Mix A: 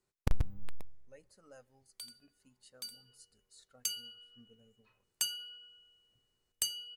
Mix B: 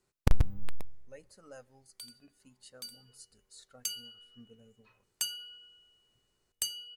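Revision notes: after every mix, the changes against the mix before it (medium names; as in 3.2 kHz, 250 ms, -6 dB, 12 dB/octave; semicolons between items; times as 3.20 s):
speech +6.0 dB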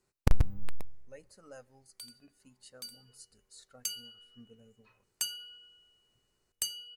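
master: add peaking EQ 3.4 kHz -3.5 dB 0.28 oct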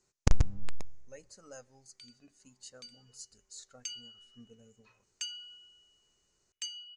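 background: add band-pass filter 2.4 kHz, Q 1.9; master: add resonant low-pass 6.6 kHz, resonance Q 3.7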